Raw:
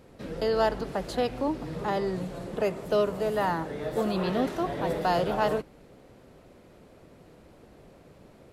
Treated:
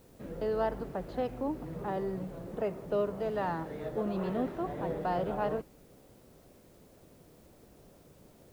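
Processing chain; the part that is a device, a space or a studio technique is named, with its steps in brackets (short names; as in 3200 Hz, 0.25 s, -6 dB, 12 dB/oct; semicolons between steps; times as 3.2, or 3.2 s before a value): 3.2–3.89 high shelf 3400 Hz +11 dB; cassette deck with a dirty head (tape spacing loss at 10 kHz 33 dB; wow and flutter; white noise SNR 32 dB); gain -4 dB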